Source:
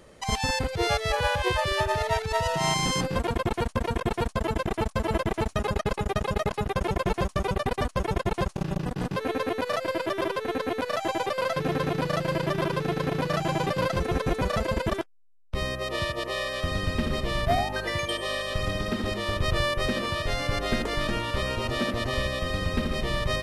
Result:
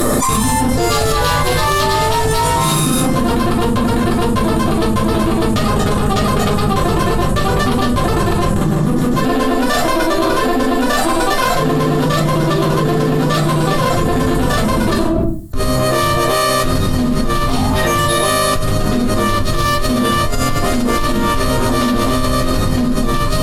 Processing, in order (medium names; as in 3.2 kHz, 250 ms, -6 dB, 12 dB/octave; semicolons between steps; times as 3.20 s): formant shift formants +3 st; high-order bell 3.7 kHz -12.5 dB; small resonant body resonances 230/1200/1800 Hz, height 8 dB, ringing for 20 ms; Chebyshev shaper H 2 -9 dB, 8 -19 dB, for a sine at -8.5 dBFS; resonant high shelf 2.8 kHz +9.5 dB, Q 1.5; simulated room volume 190 m³, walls furnished, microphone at 3.2 m; level flattener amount 100%; trim -7.5 dB